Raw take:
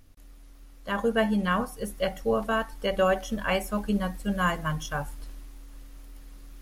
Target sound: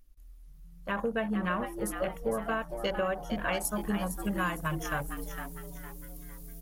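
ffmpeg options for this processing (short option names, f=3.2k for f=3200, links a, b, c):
-filter_complex "[0:a]aemphasis=mode=production:type=75fm,afwtdn=0.0178,asetnsamples=n=441:p=0,asendcmd='3.65 highshelf g 5;5.17 highshelf g 12',highshelf=f=4.6k:g=-7.5,acompressor=threshold=-28dB:ratio=4,asplit=5[a][b][c][d][e];[b]adelay=457,afreqshift=130,volume=-9dB[f];[c]adelay=914,afreqshift=260,volume=-17dB[g];[d]adelay=1371,afreqshift=390,volume=-24.9dB[h];[e]adelay=1828,afreqshift=520,volume=-32.9dB[i];[a][f][g][h][i]amix=inputs=5:normalize=0"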